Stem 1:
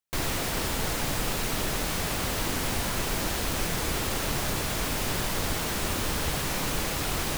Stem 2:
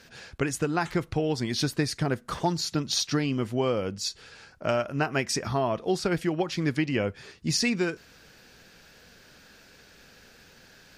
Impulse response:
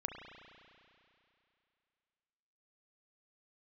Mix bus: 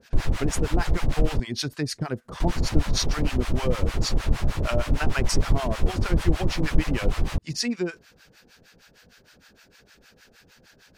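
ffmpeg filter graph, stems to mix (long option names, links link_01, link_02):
-filter_complex "[0:a]aemphasis=mode=reproduction:type=bsi,volume=1dB,asplit=3[link_01][link_02][link_03];[link_01]atrim=end=1.4,asetpts=PTS-STARTPTS,afade=type=out:start_time=1.396:duration=0.004:curve=hsin[link_04];[link_02]atrim=start=1.4:end=2.4,asetpts=PTS-STARTPTS,volume=0[link_05];[link_03]atrim=start=2.4,asetpts=PTS-STARTPTS,afade=type=in:duration=0.004:curve=hsin[link_06];[link_04][link_05][link_06]concat=n=3:v=0:a=1[link_07];[1:a]volume=2.5dB[link_08];[link_07][link_08]amix=inputs=2:normalize=0,acrossover=split=730[link_09][link_10];[link_09]aeval=exprs='val(0)*(1-1/2+1/2*cos(2*PI*6.5*n/s))':channel_layout=same[link_11];[link_10]aeval=exprs='val(0)*(1-1/2-1/2*cos(2*PI*6.5*n/s))':channel_layout=same[link_12];[link_11][link_12]amix=inputs=2:normalize=0"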